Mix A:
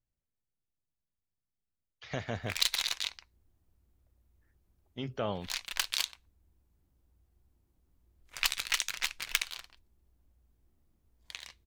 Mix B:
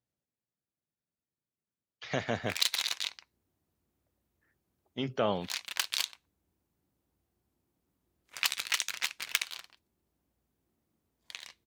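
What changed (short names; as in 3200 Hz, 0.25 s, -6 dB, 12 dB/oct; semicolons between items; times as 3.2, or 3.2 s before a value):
speech +5.0 dB; master: add HPF 150 Hz 12 dB/oct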